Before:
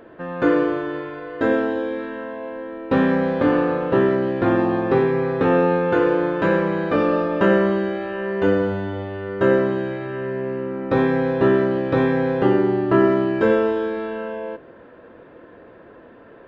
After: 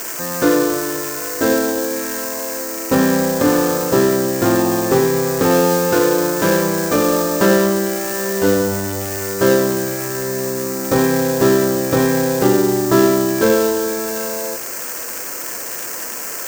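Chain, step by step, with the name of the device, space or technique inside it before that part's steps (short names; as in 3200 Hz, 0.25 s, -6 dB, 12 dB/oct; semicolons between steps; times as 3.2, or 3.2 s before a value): budget class-D amplifier (switching dead time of 0.13 ms; switching spikes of -11.5 dBFS); gain +3 dB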